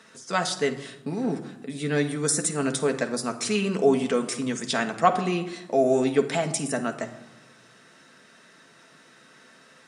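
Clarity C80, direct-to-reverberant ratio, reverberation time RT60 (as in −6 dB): 14.5 dB, 4.0 dB, 0.95 s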